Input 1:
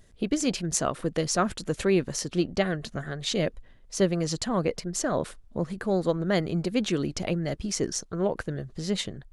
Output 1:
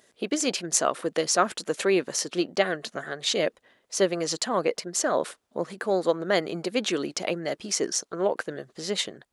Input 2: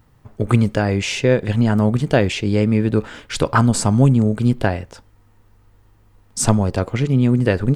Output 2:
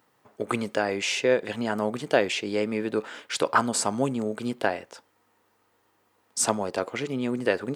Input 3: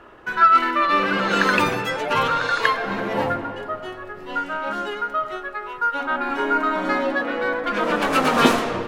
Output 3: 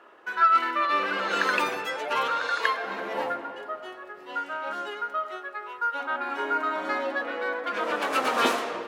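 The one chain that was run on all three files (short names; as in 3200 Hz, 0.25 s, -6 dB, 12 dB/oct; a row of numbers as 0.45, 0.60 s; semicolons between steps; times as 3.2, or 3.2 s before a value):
HPF 380 Hz 12 dB/oct; match loudness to -27 LUFS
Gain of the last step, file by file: +4.0, -3.5, -5.5 dB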